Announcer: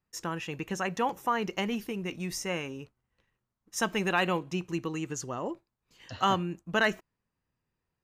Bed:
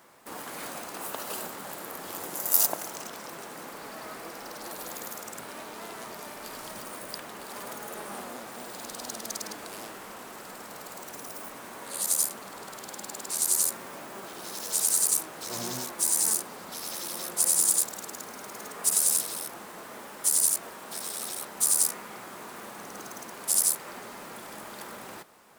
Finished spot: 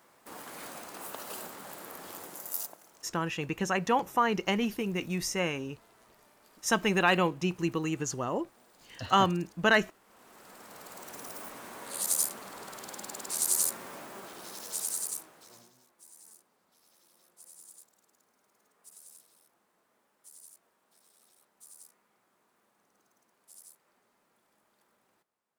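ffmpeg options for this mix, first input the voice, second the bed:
-filter_complex "[0:a]adelay=2900,volume=2.5dB[a];[1:a]volume=13dB,afade=t=out:st=2.06:d=0.71:silence=0.16788,afade=t=in:st=10.04:d=1.22:silence=0.11885,afade=t=out:st=13.9:d=1.81:silence=0.0421697[b];[a][b]amix=inputs=2:normalize=0"

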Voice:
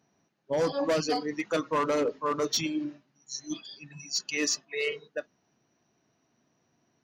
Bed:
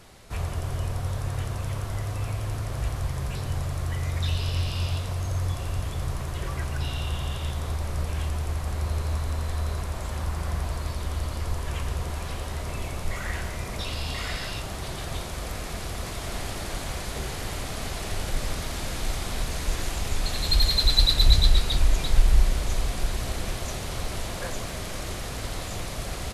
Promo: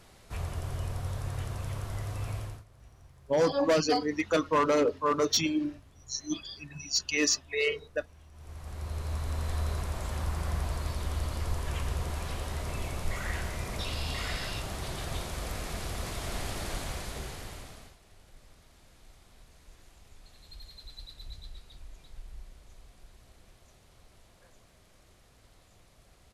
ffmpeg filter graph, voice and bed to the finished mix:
-filter_complex "[0:a]adelay=2800,volume=2dB[a];[1:a]volume=18dB,afade=t=out:st=2.37:d=0.27:silence=0.0891251,afade=t=in:st=8.32:d=1.21:silence=0.0668344,afade=t=out:st=16.71:d=1.26:silence=0.0595662[b];[a][b]amix=inputs=2:normalize=0"

